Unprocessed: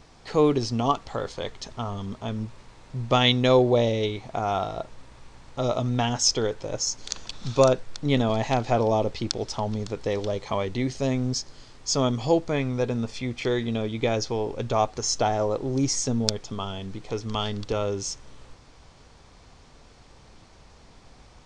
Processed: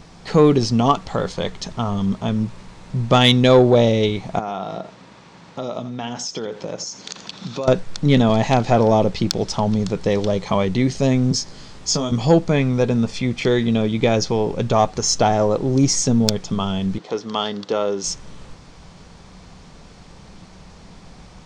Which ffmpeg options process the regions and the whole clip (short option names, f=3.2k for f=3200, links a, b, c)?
-filter_complex "[0:a]asettb=1/sr,asplit=3[a][b][c];[a]atrim=end=4.394[d];[b]atrim=start=4.39:end=7.68,asetpts=PTS-STARTPTS,afade=t=in:d=0.004:c=qsin,afade=t=out:st=3.286:d=0.004:c=qsin,acompressor=threshold=-31dB:ratio=5:attack=3.2:release=140:knee=1:detection=peak,highpass=190,lowpass=6.2k,aecho=1:1:83:0.211,atrim=end_sample=145089[e];[c]atrim=start=7.676[f];[d][e]acrossfade=d=0.004:c1=hsin:c2=qsin[g];[g][f]acrossfade=d=0.004:c1=qsin:c2=hsin,asettb=1/sr,asplit=3[h][i][j];[h]atrim=end=11.314[k];[i]atrim=start=11.31:end=12.12,asetpts=PTS-STARTPTS,afade=t=in:d=0.004:c=qsin,afade=t=out:st=0.806:d=0.004:c=qsin,asplit=2[l][m];[m]adelay=19,volume=-5dB[n];[l][n]amix=inputs=2:normalize=0,atrim=end_sample=35721,acrossover=split=97|4500[o][p][q];[o]acompressor=threshold=-43dB:ratio=4[r];[p]acompressor=threshold=-30dB:ratio=4[s];[q]acompressor=threshold=-28dB:ratio=4[t];[r][s][t]amix=inputs=3:normalize=0[u];[j]atrim=start=12.116[v];[k][u]acrossfade=d=0.004:c1=hsin:c2=qsin[w];[w][v]acrossfade=d=0.004:c1=qsin:c2=hsin,asettb=1/sr,asplit=3[x][y][z];[x]atrim=end=16.984[aa];[y]atrim=start=16.98:end=18.04,asetpts=PTS-STARTPTS,afade=t=in:d=0.004:c=qsin,afade=t=out:st=1.056:d=0.004:c=qsin,highpass=310,lowpass=5.2k,equalizer=f=2.4k:t=o:w=0.39:g=-6[ab];[z]atrim=start=18.036[ac];[aa][ab]acrossfade=d=0.004:c1=hsin:c2=qsin[ad];[ad][ac]acrossfade=d=0.004:c1=qsin:c2=hsin,equalizer=f=180:w=3.9:g=12.5,acontrast=83"